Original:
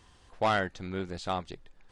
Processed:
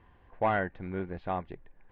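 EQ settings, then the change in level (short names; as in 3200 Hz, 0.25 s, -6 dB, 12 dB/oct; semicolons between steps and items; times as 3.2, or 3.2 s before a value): LPF 2200 Hz 24 dB/oct; notch 1300 Hz, Q 7.1; 0.0 dB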